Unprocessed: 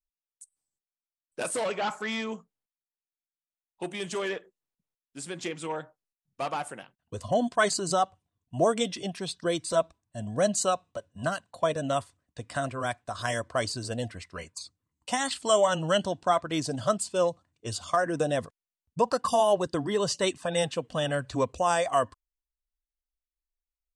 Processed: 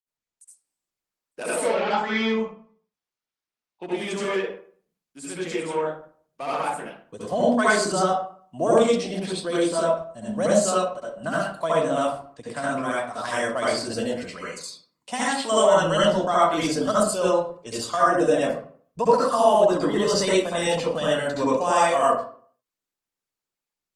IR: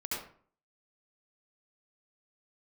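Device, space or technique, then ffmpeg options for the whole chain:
far-field microphone of a smart speaker: -filter_complex "[0:a]asettb=1/sr,asplit=3[s0][s1][s2];[s0]atrim=end=1.644[s3];[s1]atrim=start=1.64:end=3.92,asetpts=PTS-STARTPTS,afade=t=in:d=0.004:c=qsin,afade=t=out:st=2.276:d=0.004:c=qsin,lowpass=f=5500:w=0.5412,lowpass=f=5500:w=1.3066[s4];[s2]atrim=start=3.916[s5];[s3][s4]acrossfade=d=0.004:c1=hsin:c2=qsin[s6];[s6][s5]acrossfade=d=0.004:c1=qsin:c2=hsin[s7];[1:a]atrim=start_sample=2205[s8];[s7][s8]afir=irnorm=-1:irlink=0,highpass=f=150:w=0.5412,highpass=f=150:w=1.3066,dynaudnorm=f=140:g=5:m=1.5" -ar 48000 -c:a libopus -b:a 24k

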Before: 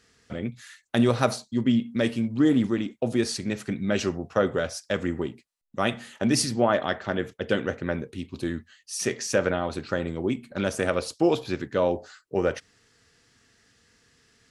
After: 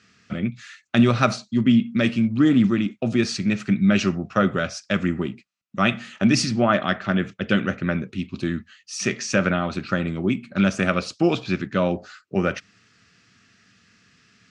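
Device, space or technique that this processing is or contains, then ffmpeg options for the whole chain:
car door speaker: -af "highpass=84,equalizer=f=110:t=q:w=4:g=4,equalizer=f=190:t=q:w=4:g=10,equalizer=f=470:t=q:w=4:g=-8,equalizer=f=890:t=q:w=4:g=-6,equalizer=f=1300:t=q:w=4:g=6,equalizer=f=2500:t=q:w=4:g=7,lowpass=f=6900:w=0.5412,lowpass=f=6900:w=1.3066,volume=1.41"

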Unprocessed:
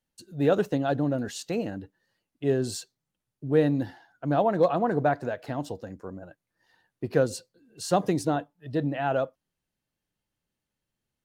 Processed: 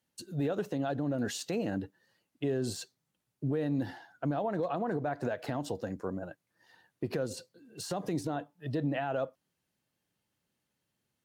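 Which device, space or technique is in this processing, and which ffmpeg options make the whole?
podcast mastering chain: -af "highpass=93,deesser=0.9,acompressor=threshold=0.0398:ratio=3,alimiter=level_in=1.41:limit=0.0631:level=0:latency=1:release=96,volume=0.708,volume=1.58" -ar 44100 -c:a libmp3lame -b:a 96k

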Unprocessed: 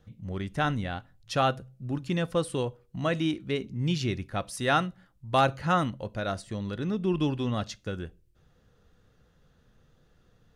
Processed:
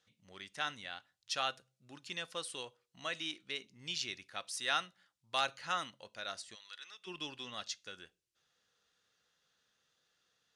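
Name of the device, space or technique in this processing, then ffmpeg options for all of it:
piezo pickup straight into a mixer: -filter_complex "[0:a]asplit=3[s0][s1][s2];[s0]afade=t=out:st=6.54:d=0.02[s3];[s1]highpass=1200,afade=t=in:st=6.54:d=0.02,afade=t=out:st=7.06:d=0.02[s4];[s2]afade=t=in:st=7.06:d=0.02[s5];[s3][s4][s5]amix=inputs=3:normalize=0,lowpass=5600,aderivative,volume=1.88"

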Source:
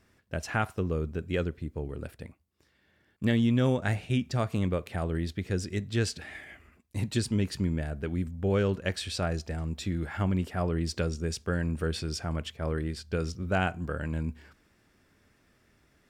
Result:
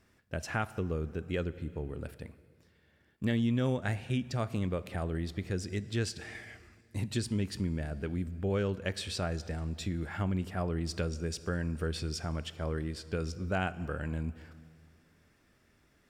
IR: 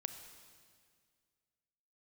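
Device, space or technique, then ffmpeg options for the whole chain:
ducked reverb: -filter_complex "[0:a]asplit=3[s0][s1][s2];[1:a]atrim=start_sample=2205[s3];[s1][s3]afir=irnorm=-1:irlink=0[s4];[s2]apad=whole_len=709721[s5];[s4][s5]sidechaincompress=threshold=0.0251:ratio=8:attack=42:release=255,volume=0.891[s6];[s0][s6]amix=inputs=2:normalize=0,volume=0.473"

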